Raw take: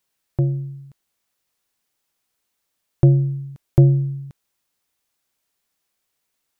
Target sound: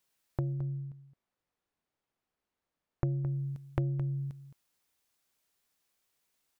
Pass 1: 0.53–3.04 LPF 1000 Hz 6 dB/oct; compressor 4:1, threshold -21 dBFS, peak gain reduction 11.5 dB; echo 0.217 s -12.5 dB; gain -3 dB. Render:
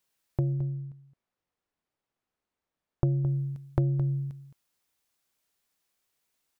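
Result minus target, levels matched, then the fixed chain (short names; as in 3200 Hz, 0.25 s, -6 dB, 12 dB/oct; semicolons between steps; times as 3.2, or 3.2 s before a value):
compressor: peak gain reduction -5.5 dB
0.53–3.04 LPF 1000 Hz 6 dB/oct; compressor 4:1, threshold -28.5 dBFS, peak gain reduction 17 dB; echo 0.217 s -12.5 dB; gain -3 dB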